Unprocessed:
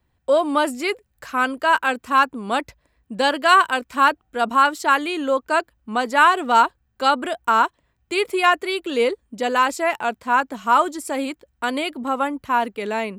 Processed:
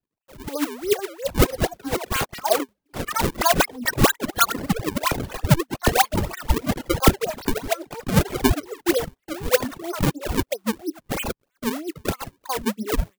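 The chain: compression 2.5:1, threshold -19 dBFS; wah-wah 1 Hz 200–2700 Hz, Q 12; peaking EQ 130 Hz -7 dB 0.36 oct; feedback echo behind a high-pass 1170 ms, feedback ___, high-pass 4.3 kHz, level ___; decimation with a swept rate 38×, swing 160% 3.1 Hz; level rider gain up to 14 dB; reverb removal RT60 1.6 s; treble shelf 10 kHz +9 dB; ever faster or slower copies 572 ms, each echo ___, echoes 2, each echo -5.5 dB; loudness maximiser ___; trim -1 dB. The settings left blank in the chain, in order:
43%, -23.5 dB, +5 st, +3 dB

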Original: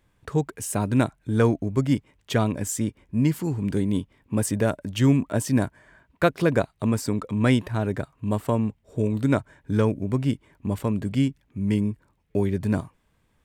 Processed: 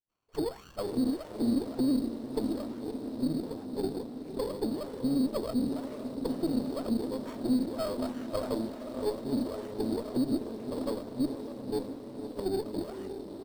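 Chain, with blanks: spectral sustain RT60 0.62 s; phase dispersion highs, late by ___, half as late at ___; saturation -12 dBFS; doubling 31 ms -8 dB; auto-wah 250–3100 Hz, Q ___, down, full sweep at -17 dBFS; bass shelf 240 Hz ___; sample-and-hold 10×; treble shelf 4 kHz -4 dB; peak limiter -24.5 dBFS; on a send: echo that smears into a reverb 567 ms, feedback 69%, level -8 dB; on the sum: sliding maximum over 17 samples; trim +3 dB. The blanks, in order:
117 ms, 1.4 kHz, 11, +4 dB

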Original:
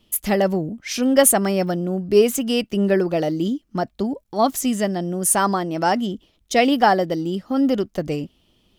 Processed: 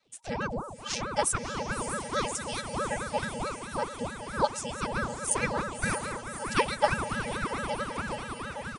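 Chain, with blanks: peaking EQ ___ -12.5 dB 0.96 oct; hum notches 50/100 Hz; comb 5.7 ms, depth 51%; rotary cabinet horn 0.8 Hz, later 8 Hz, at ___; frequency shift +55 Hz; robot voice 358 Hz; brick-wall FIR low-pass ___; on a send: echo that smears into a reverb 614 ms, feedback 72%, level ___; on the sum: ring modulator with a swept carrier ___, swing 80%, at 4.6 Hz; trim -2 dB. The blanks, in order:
320 Hz, 2.96 s, 9.6 kHz, -8 dB, 530 Hz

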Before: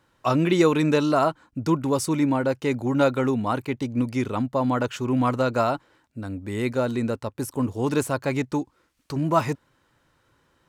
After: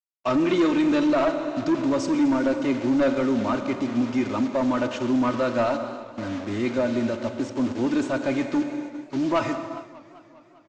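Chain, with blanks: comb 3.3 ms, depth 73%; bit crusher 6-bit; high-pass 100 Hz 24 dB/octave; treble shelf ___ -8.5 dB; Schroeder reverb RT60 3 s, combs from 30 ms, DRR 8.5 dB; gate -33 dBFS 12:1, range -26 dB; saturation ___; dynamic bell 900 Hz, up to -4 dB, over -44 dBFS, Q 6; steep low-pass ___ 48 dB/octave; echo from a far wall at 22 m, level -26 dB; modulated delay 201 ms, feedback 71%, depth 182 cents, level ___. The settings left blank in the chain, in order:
5 kHz, -15.5 dBFS, 7.3 kHz, -19.5 dB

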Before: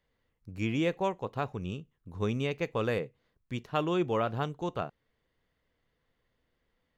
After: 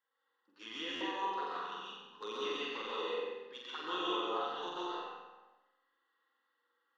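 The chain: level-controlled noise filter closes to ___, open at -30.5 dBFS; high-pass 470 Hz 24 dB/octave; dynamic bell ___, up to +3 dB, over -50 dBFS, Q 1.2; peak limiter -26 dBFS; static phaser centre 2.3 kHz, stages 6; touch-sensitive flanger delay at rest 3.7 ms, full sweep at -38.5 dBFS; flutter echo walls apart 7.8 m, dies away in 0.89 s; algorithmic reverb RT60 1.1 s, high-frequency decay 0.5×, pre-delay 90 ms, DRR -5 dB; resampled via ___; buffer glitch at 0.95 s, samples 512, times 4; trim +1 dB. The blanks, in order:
2.7 kHz, 2 kHz, 22.05 kHz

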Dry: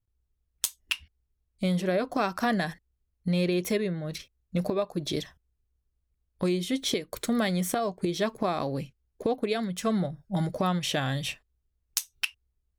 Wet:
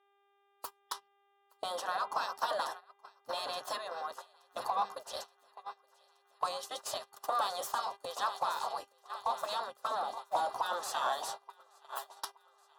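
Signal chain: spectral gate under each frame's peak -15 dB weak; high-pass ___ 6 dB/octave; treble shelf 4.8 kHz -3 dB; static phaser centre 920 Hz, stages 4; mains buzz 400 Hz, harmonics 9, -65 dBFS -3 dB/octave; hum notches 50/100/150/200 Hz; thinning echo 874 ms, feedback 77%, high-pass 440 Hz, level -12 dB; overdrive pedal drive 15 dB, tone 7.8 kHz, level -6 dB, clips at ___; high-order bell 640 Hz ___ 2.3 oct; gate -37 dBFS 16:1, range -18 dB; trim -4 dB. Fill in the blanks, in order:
140 Hz, -23 dBFS, +9.5 dB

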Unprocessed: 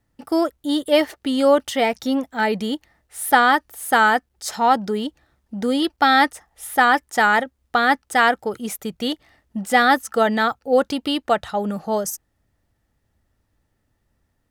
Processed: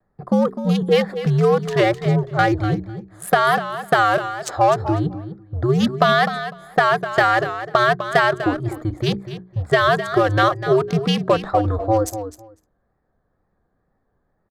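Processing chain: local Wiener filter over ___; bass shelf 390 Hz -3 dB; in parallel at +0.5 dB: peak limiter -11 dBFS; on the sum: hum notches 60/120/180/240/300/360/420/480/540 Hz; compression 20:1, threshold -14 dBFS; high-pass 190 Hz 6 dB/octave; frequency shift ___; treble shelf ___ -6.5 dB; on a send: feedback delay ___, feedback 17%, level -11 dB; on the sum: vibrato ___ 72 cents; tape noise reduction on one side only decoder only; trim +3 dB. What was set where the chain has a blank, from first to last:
15 samples, -110 Hz, 6.8 kHz, 251 ms, 2.1 Hz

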